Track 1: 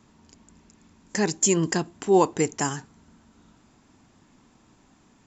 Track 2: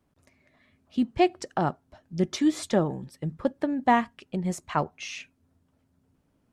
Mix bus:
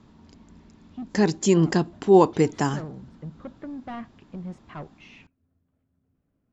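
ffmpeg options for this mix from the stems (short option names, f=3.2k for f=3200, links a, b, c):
-filter_complex "[0:a]highshelf=f=3.1k:t=q:w=1.5:g=6.5,volume=1.5dB,asplit=2[a][b];[1:a]bandreject=f=910:w=7.8,asoftclip=type=tanh:threshold=-25.5dB,volume=-8dB[c];[b]apad=whole_len=287622[d];[c][d]sidechaincompress=threshold=-24dB:ratio=8:attack=16:release=188[e];[a][e]amix=inputs=2:normalize=0,lowpass=2.6k,lowshelf=f=340:g=5"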